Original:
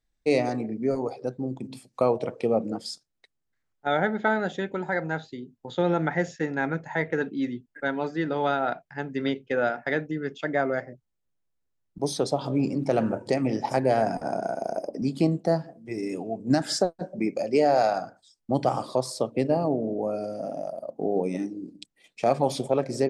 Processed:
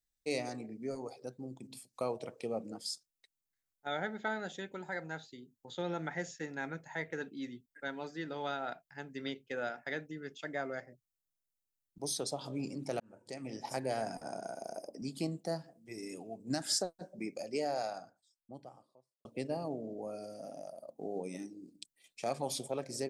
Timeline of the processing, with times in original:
0:13.00–0:13.74: fade in
0:17.26–0:19.25: fade out and dull
whole clip: first-order pre-emphasis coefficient 0.8

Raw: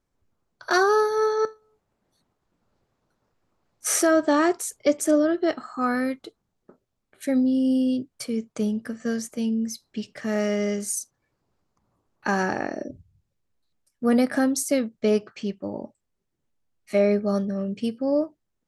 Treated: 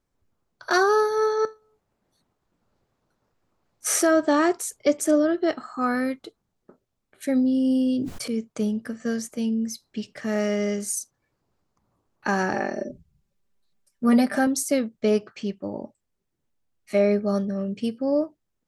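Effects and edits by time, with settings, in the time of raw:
0:07.61–0:08.28: level that may fall only so fast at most 35 dB per second
0:12.53–0:14.47: comb filter 5.1 ms, depth 74%

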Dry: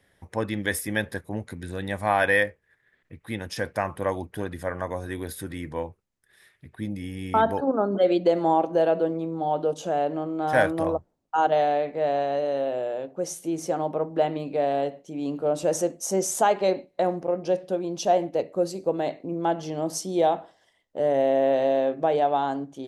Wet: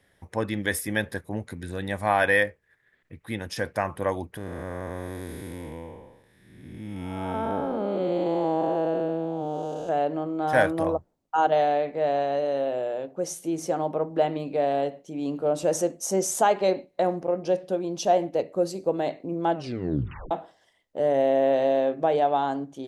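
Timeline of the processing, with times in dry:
0:04.37–0:09.89: spectrum smeared in time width 454 ms
0:19.54: tape stop 0.77 s

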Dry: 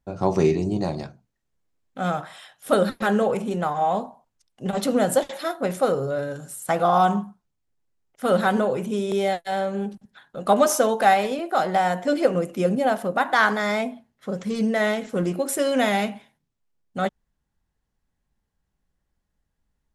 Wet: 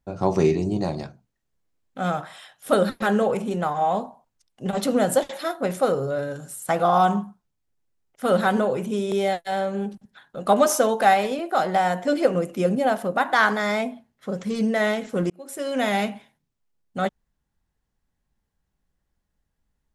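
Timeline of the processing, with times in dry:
0:15.30–0:16.00: fade in

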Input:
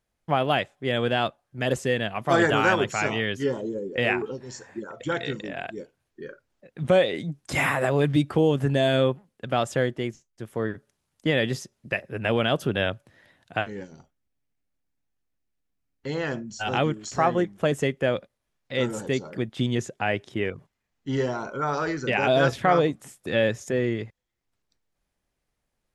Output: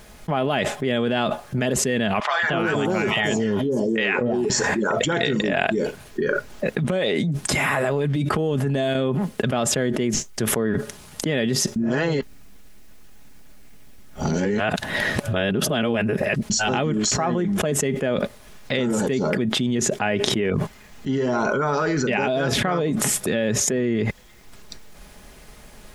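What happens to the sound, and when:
0:02.20–0:04.50: three-band delay without the direct sound mids, lows, highs 230/360 ms, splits 820/5,400 Hz
0:06.89–0:08.95: downward compressor, threshold −26 dBFS
0:11.76–0:16.50: reverse
whole clip: dynamic equaliser 240 Hz, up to +5 dB, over −33 dBFS, Q 0.8; comb filter 4.8 ms, depth 34%; envelope flattener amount 100%; level −6.5 dB

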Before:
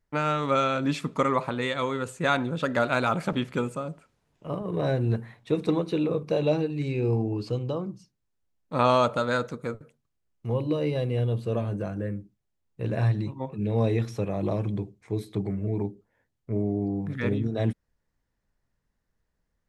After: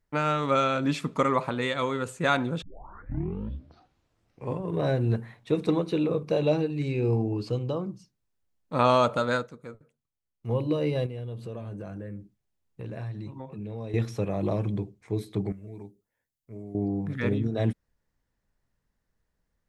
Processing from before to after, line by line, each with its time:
0:02.62: tape start 2.18 s
0:09.34–0:10.52: duck −10 dB, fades 0.13 s
0:11.06–0:13.94: downward compressor 3 to 1, threshold −36 dBFS
0:15.52–0:16.75: first-order pre-emphasis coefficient 0.8

